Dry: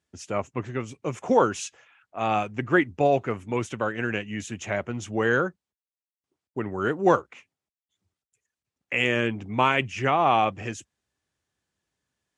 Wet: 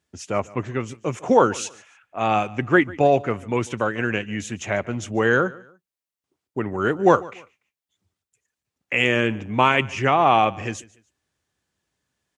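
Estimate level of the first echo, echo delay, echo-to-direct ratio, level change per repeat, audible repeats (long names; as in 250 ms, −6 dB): −21.5 dB, 146 ms, −21.0 dB, −10.0 dB, 2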